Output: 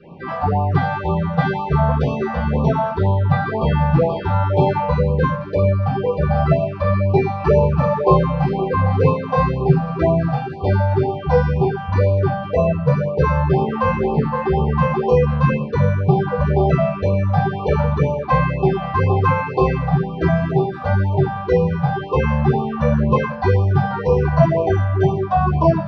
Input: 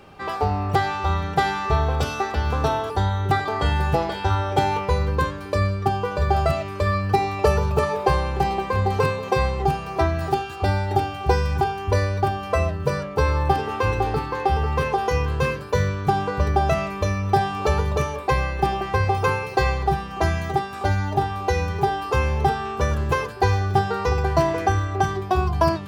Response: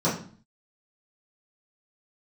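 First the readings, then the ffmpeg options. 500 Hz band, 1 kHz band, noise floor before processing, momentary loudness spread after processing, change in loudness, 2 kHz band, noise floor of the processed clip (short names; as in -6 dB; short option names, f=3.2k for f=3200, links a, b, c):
+5.5 dB, +1.0 dB, -33 dBFS, 4 LU, +4.5 dB, 0.0 dB, -28 dBFS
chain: -filter_complex "[0:a]lowpass=f=2.5k:t=q:w=1.7[a];[1:a]atrim=start_sample=2205,afade=t=out:st=0.24:d=0.01,atrim=end_sample=11025[b];[a][b]afir=irnorm=-1:irlink=0,afftfilt=real='re*(1-between(b*sr/1024,310*pow(1700/310,0.5+0.5*sin(2*PI*2*pts/sr))/1.41,310*pow(1700/310,0.5+0.5*sin(2*PI*2*pts/sr))*1.41))':imag='im*(1-between(b*sr/1024,310*pow(1700/310,0.5+0.5*sin(2*PI*2*pts/sr))/1.41,310*pow(1700/310,0.5+0.5*sin(2*PI*2*pts/sr))*1.41))':win_size=1024:overlap=0.75,volume=-12dB"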